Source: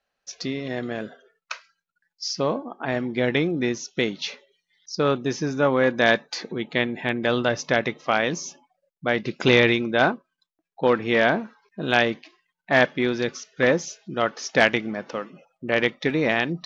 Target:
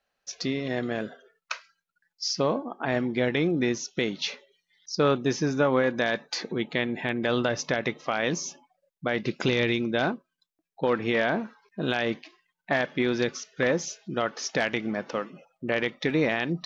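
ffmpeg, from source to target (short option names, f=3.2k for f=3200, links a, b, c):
-filter_complex "[0:a]asettb=1/sr,asplit=3[a][b][c];[a]atrim=end=9.464[d];[b]atrim=start=9.46:end=10.84,asetpts=PTS-STARTPTS,afade=t=in:d=0.004:c=qsin,afade=t=out:st=1.376:d=0.004:c=qsin,equalizer=f=1.1k:w=0.53:g=-5.5[e];[c]atrim=start=10.836[f];[d][e]acrossfade=d=0.004:c1=hsin:c2=qsin[g];[g][f]acrossfade=d=0.004:c1=qsin:c2=hsin,alimiter=limit=-13.5dB:level=0:latency=1:release=113"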